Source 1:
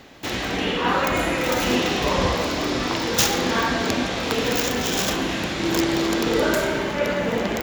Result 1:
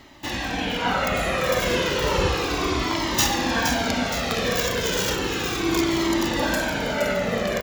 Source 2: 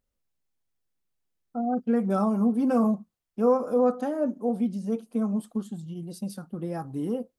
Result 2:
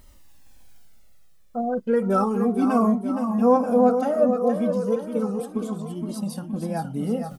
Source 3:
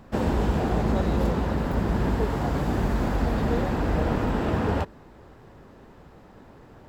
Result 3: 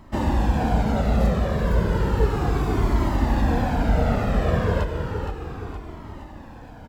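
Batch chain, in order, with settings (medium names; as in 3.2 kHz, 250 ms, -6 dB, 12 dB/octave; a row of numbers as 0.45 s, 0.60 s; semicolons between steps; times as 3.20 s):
reverse; upward compressor, threshold -39 dBFS; reverse; feedback delay 468 ms, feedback 53%, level -7 dB; Shepard-style flanger falling 0.33 Hz; normalise loudness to -23 LUFS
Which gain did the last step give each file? +2.5 dB, +9.5 dB, +6.0 dB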